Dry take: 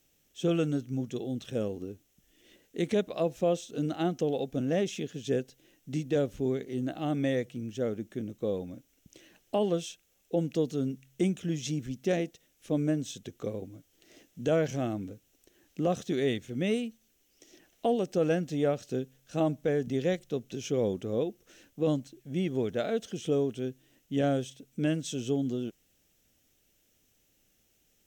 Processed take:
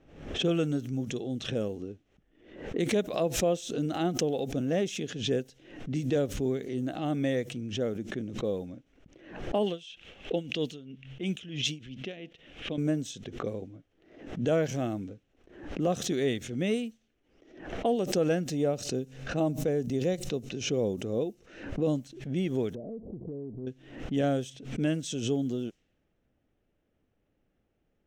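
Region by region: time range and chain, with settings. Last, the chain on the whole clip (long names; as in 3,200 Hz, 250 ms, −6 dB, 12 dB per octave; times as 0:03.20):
0:09.66–0:12.78: parametric band 3,000 Hz +14 dB 0.97 octaves + tremolo with a sine in dB 3 Hz, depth 19 dB
0:18.47–0:21.96: notch filter 3,300 Hz, Q 11 + dynamic equaliser 1,700 Hz, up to −7 dB, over −49 dBFS, Q 1.1
0:22.75–0:23.67: converter with a step at zero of −39.5 dBFS + Gaussian smoothing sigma 18 samples + downward compressor 4 to 1, threshold −36 dBFS
whole clip: low-pass that shuts in the quiet parts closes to 1,300 Hz, open at −28 dBFS; background raised ahead of every attack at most 85 dB per second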